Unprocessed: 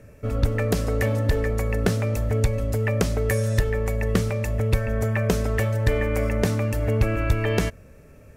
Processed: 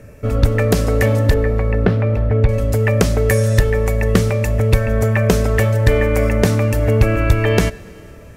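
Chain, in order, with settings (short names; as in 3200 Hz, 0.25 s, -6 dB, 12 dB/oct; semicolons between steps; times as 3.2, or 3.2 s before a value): 1.34–2.49 air absorption 390 m; plate-style reverb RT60 3.3 s, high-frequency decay 0.95×, DRR 19 dB; gain +7.5 dB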